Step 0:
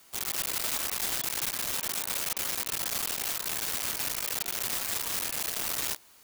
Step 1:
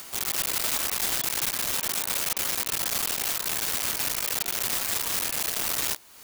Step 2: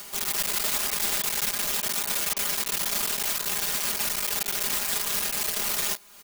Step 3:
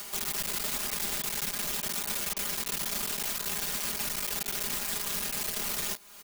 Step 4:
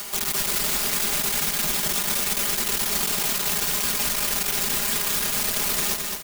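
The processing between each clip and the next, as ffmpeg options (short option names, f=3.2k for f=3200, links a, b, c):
-af "acompressor=mode=upward:threshold=-36dB:ratio=2.5,volume=4dB"
-af "aecho=1:1:4.9:0.89,volume=-2dB"
-filter_complex "[0:a]acrossover=split=330[a][b];[b]acompressor=threshold=-30dB:ratio=4[c];[a][c]amix=inputs=2:normalize=0"
-af "aecho=1:1:215|430|645|860|1075|1290:0.596|0.268|0.121|0.0543|0.0244|0.011,volume=7dB"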